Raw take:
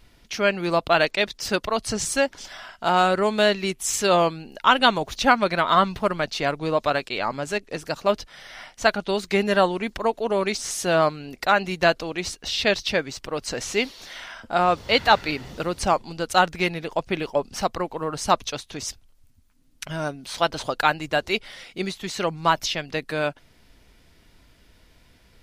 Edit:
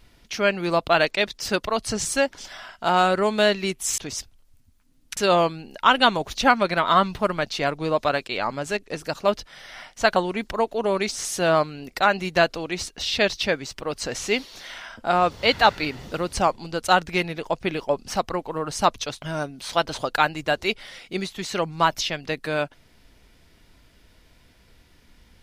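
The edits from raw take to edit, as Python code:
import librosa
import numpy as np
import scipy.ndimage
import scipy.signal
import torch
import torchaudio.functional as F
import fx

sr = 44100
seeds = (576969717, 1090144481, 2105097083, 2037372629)

y = fx.edit(x, sr, fx.cut(start_s=8.97, length_s=0.65),
    fx.move(start_s=18.68, length_s=1.19, to_s=3.98), tone=tone)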